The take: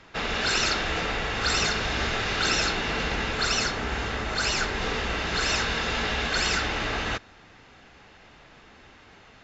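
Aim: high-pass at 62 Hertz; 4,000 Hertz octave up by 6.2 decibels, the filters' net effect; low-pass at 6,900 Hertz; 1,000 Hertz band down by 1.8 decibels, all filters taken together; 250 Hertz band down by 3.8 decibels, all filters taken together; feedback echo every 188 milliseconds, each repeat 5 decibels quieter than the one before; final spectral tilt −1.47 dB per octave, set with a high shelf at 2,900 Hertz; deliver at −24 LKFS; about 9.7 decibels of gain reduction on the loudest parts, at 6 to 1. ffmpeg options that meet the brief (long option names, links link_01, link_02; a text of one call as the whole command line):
ffmpeg -i in.wav -af "highpass=62,lowpass=6900,equalizer=frequency=250:width_type=o:gain=-5,equalizer=frequency=1000:width_type=o:gain=-3.5,highshelf=frequency=2900:gain=5.5,equalizer=frequency=4000:width_type=o:gain=4,acompressor=threshold=-28dB:ratio=6,aecho=1:1:188|376|564|752|940|1128|1316:0.562|0.315|0.176|0.0988|0.0553|0.031|0.0173,volume=3.5dB" out.wav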